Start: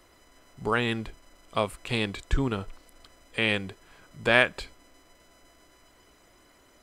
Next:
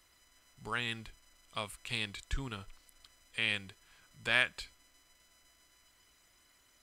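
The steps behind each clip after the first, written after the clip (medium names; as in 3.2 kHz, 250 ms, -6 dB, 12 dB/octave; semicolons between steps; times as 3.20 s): amplifier tone stack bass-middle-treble 5-5-5; trim +3 dB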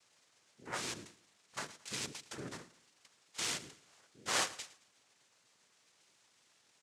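noise-vocoded speech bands 3; feedback delay 110 ms, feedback 34%, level -17.5 dB; trim -4 dB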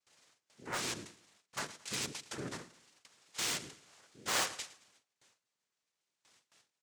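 in parallel at -7 dB: integer overflow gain 31.5 dB; on the sum: gate with hold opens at -55 dBFS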